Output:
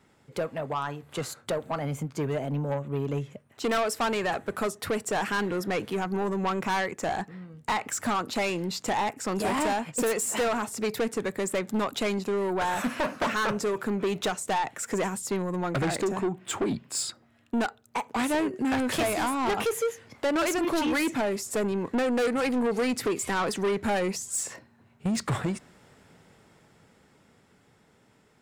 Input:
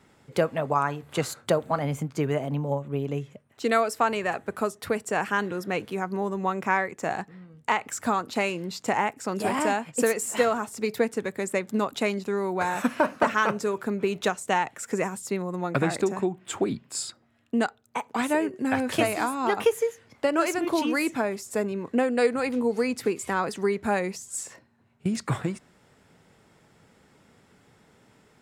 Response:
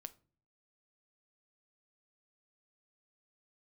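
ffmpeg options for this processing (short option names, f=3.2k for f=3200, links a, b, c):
-af "dynaudnorm=f=170:g=31:m=12dB,asoftclip=type=tanh:threshold=-19dB,volume=-3.5dB"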